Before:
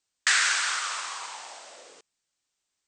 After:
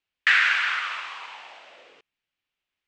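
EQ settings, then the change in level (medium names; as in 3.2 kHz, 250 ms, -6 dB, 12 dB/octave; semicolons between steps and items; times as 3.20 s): dynamic bell 1.7 kHz, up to +5 dB, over -35 dBFS, Q 1.3; resonant low-pass 2.7 kHz, resonance Q 2.3; bass shelf 150 Hz +5.5 dB; -3.0 dB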